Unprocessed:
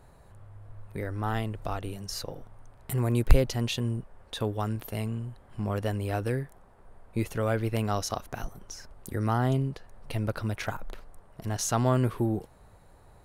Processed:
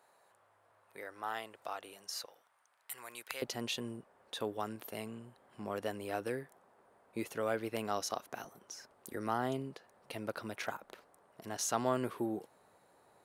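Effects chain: high-pass 620 Hz 12 dB/octave, from 2.26 s 1.3 kHz, from 3.42 s 280 Hz; trim -5 dB

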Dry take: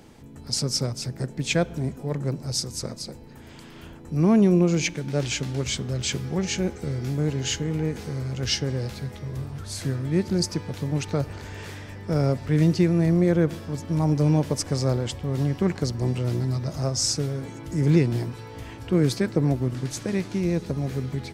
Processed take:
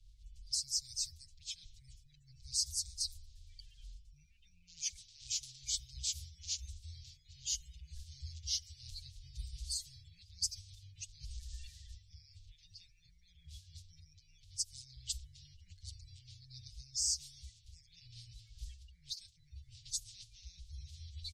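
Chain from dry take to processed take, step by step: coarse spectral quantiser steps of 30 dB; reverse; compression 16:1, threshold -30 dBFS, peak gain reduction 17 dB; reverse; inverse Chebyshev band-stop 240–1100 Hz, stop band 70 dB; level-controlled noise filter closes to 2.9 kHz, open at -36.5 dBFS; endless flanger 6.4 ms +0.55 Hz; trim +4 dB

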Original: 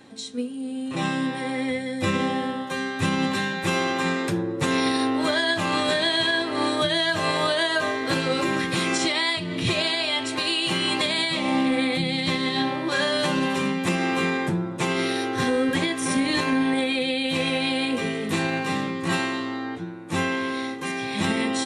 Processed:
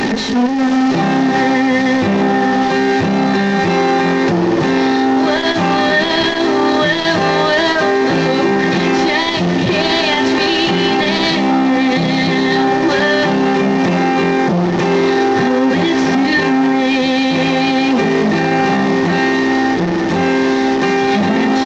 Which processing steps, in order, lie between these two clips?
one-bit delta coder 32 kbps, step -27.5 dBFS; comb 3.3 ms, depth 33%; small resonant body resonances 200/390/780/1800 Hz, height 14 dB, ringing for 45 ms; loudness maximiser +15 dB; transformer saturation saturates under 420 Hz; trim -3 dB

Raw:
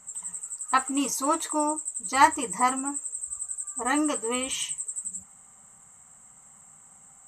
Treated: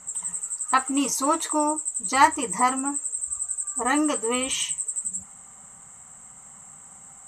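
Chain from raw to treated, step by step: low-pass 12 kHz 12 dB/octave; in parallel at +1.5 dB: compression, threshold -33 dBFS, peak gain reduction 19.5 dB; on the sum: short-mantissa float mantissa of 6-bit

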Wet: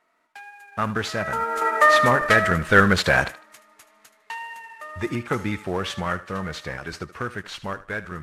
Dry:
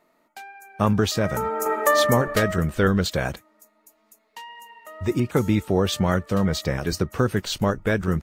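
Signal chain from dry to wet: CVSD coder 64 kbps; Doppler pass-by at 3.33 s, 10 m/s, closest 8.5 m; peaking EQ 1.6 kHz +12.5 dB 2.1 oct; on a send: thinning echo 76 ms, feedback 28%, high-pass 310 Hz, level -15 dB; on the sum: trim +1 dB

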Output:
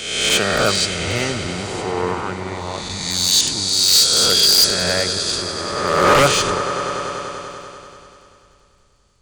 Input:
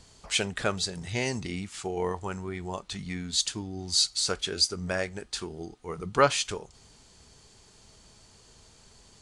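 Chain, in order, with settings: reverse spectral sustain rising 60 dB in 2.03 s; crackle 21 per s -42 dBFS; echo with a slow build-up 97 ms, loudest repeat 5, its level -14.5 dB; wavefolder -14.5 dBFS; three bands expanded up and down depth 70%; trim +5.5 dB

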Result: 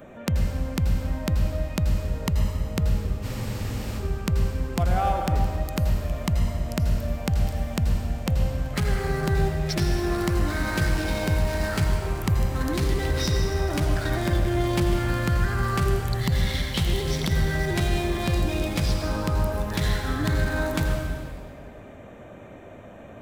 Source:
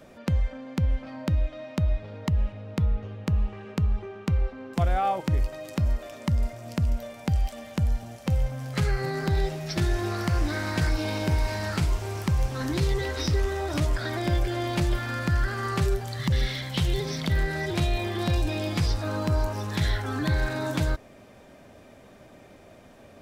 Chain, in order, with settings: local Wiener filter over 9 samples; in parallel at +2.5 dB: compression, threshold -37 dBFS, peak gain reduction 17 dB; on the sum: treble shelf 7.9 kHz +11 dB; reverberation RT60 1.8 s, pre-delay 77 ms, DRR 3 dB; spectral freeze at 3.24 s, 0.74 s; trim -2 dB

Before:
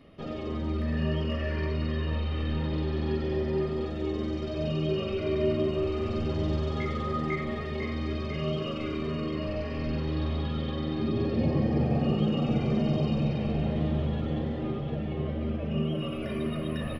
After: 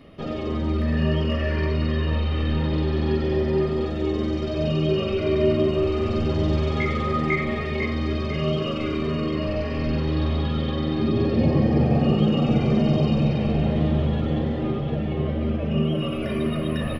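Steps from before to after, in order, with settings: 6.56–7.86 s: peaking EQ 2.3 kHz +7.5 dB 0.3 oct; trim +6.5 dB

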